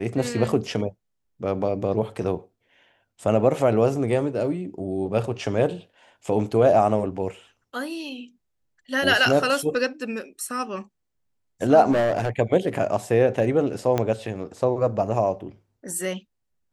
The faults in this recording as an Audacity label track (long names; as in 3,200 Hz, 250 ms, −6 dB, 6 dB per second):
11.910000	12.290000	clipping −17.5 dBFS
13.980000	13.980000	click −10 dBFS